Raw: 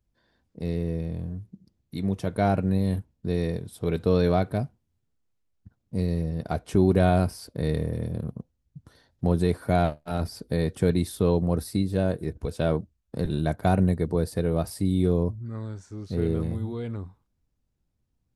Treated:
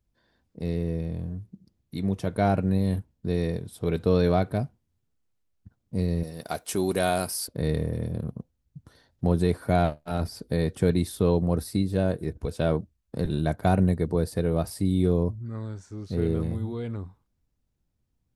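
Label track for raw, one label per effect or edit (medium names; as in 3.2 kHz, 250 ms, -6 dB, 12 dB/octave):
6.230000	7.480000	RIAA curve recording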